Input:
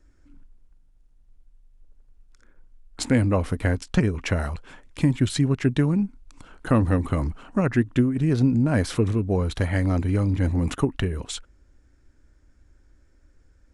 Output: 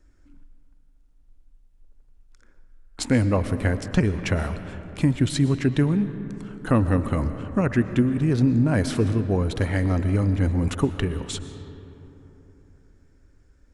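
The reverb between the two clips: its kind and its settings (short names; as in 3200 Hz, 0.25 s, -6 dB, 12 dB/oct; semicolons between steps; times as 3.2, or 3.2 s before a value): digital reverb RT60 3.6 s, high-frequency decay 0.4×, pre-delay 80 ms, DRR 11 dB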